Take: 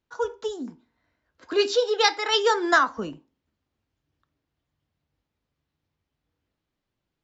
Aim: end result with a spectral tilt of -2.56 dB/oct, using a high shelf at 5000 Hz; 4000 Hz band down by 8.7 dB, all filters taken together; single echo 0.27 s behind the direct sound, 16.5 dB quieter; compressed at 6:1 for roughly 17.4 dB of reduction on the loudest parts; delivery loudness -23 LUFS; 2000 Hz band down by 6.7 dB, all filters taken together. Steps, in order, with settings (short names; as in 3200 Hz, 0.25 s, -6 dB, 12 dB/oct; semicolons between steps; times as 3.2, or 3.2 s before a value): bell 2000 Hz -7 dB; bell 4000 Hz -5 dB; high shelf 5000 Hz -8.5 dB; compressor 6:1, threshold -37 dBFS; echo 0.27 s -16.5 dB; gain +17.5 dB